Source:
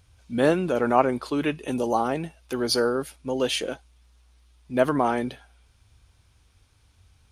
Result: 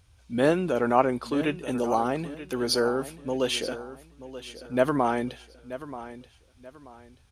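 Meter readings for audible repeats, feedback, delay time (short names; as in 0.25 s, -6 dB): 3, 31%, 0.932 s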